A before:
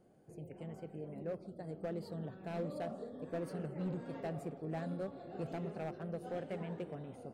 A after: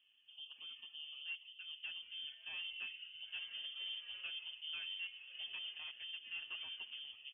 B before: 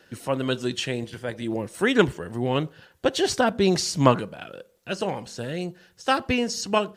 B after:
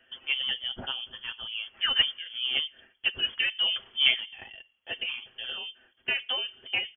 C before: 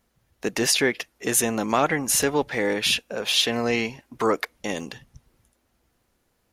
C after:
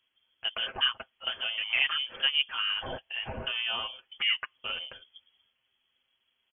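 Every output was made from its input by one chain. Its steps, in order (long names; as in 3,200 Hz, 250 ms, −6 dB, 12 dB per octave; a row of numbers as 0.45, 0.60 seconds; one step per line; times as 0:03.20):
treble cut that deepens with the level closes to 2,200 Hz, closed at −22.5 dBFS
comb filter 7.2 ms, depth 64%
voice inversion scrambler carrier 3,300 Hz
level −7.5 dB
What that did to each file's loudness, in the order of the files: −2.0, −3.0, −6.0 LU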